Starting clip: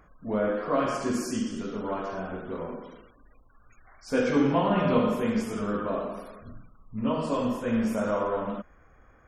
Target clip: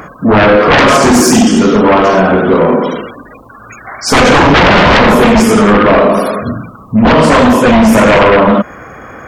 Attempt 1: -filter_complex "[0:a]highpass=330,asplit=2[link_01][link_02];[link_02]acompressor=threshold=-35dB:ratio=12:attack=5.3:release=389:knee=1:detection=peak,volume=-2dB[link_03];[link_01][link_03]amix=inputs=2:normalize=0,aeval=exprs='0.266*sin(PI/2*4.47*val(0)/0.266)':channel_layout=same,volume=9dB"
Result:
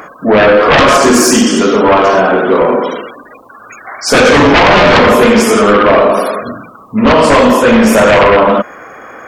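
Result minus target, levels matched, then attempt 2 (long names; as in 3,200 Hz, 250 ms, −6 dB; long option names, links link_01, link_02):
125 Hz band −5.0 dB
-filter_complex "[0:a]highpass=130,asplit=2[link_01][link_02];[link_02]acompressor=threshold=-35dB:ratio=12:attack=5.3:release=389:knee=1:detection=peak,volume=-2dB[link_03];[link_01][link_03]amix=inputs=2:normalize=0,aeval=exprs='0.266*sin(PI/2*4.47*val(0)/0.266)':channel_layout=same,volume=9dB"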